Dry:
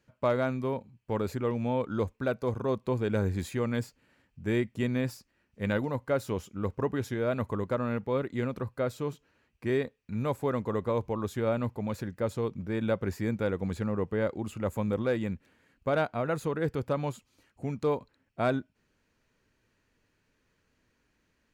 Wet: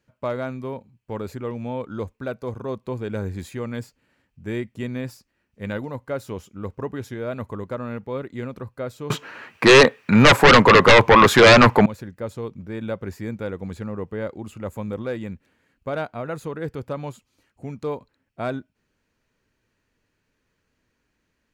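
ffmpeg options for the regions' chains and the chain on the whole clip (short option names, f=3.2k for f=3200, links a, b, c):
-filter_complex "[0:a]asettb=1/sr,asplit=3[a][b][c];[a]atrim=end=9.104[d];[b]atrim=start=9.1:end=11.86,asetpts=PTS-STARTPTS,afade=t=in:d=0.004:c=qsin,afade=t=out:st=2.756:d=0.004:c=qsin,highpass=f=110:w=0.5412,highpass=f=110:w=1.3066,equalizer=f=1.4k:w=0.38:g=15,aeval=exprs='0.501*sin(PI/2*5.01*val(0)/0.501)':c=same[e];[c]atrim=start=11.856[f];[d][e]acrossfade=d=0.004:c1=hsin:c2=qsin[g];[g][f]acrossfade=d=0.004:c1=qsin:c2=hsin"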